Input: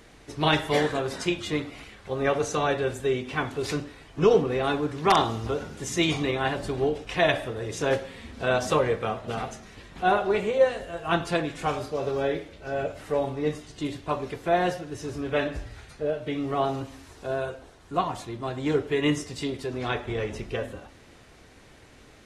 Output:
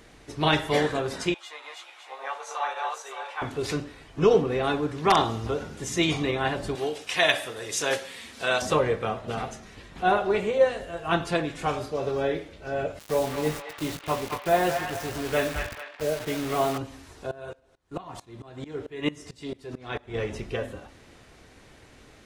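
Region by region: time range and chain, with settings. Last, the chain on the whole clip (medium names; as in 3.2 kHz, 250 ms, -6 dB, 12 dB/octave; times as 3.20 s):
1.34–3.42 s: backward echo that repeats 281 ms, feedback 41%, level -0.5 dB + ladder high-pass 730 Hz, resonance 50% + doubling 15 ms -5 dB
6.75–8.62 s: high-pass 63 Hz + tilt EQ +3.5 dB/octave
12.99–16.78 s: word length cut 6-bit, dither none + doubling 19 ms -11 dB + feedback echo behind a band-pass 219 ms, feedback 41%, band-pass 1.6 kHz, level -3 dB
17.31–20.14 s: gate -45 dBFS, range -9 dB + feedback delay 103 ms, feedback 41%, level -21.5 dB + sawtooth tremolo in dB swelling 4.5 Hz, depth 22 dB
whole clip: none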